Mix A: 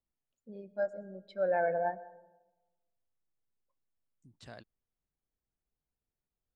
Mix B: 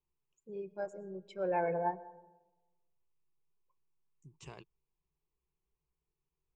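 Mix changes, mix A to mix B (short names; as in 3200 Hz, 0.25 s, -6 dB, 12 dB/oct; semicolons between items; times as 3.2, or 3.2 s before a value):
first voice: remove air absorption 66 m; master: add ripple EQ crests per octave 0.73, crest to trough 15 dB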